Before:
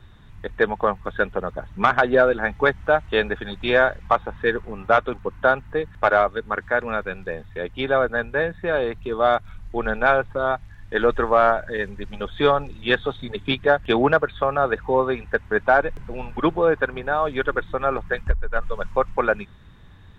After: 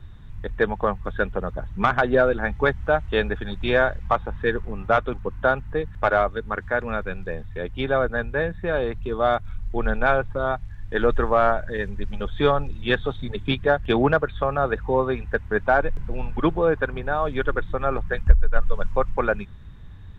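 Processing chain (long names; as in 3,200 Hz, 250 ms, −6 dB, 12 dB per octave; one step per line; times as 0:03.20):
low-shelf EQ 160 Hz +11.5 dB
level −3 dB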